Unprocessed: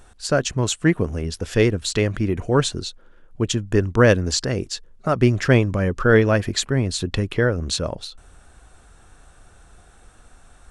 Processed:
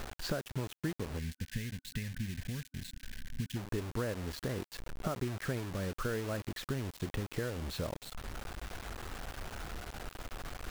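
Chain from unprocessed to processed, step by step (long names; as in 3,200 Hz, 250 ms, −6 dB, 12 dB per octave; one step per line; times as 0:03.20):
low-pass filter 2,100 Hz 12 dB per octave
downward compressor 8 to 1, threshold −39 dBFS, peak gain reduction 27.5 dB
bit reduction 8 bits
gain on a spectral selection 0:01.19–0:03.56, 270–1,500 Hz −17 dB
level +4.5 dB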